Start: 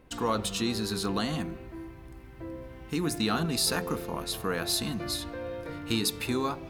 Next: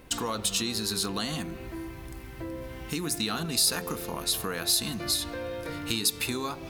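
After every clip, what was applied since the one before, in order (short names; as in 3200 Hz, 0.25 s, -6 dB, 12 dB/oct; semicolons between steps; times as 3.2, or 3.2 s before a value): compressor 2.5:1, threshold -39 dBFS, peak gain reduction 11 dB; high shelf 2800 Hz +10.5 dB; gain +5 dB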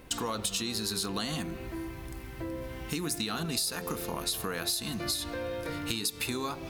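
compressor 6:1, threshold -28 dBFS, peak gain reduction 8.5 dB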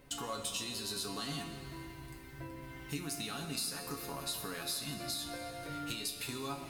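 resonator 140 Hz, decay 0.18 s, harmonics all, mix 90%; Schroeder reverb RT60 2.4 s, combs from 29 ms, DRR 7 dB; gain +1 dB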